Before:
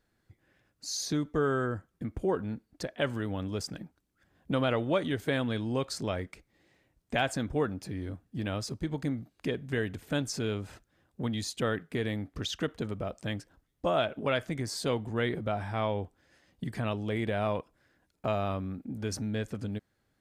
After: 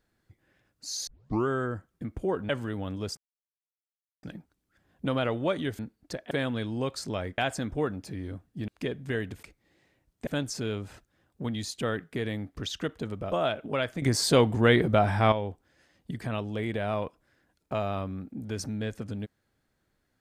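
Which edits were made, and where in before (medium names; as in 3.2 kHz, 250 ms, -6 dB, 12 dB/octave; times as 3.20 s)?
1.07 s: tape start 0.41 s
2.49–3.01 s: move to 5.25 s
3.69 s: insert silence 1.06 s
6.32–7.16 s: move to 10.06 s
8.46–9.31 s: delete
13.11–13.85 s: delete
14.55–15.85 s: gain +9.5 dB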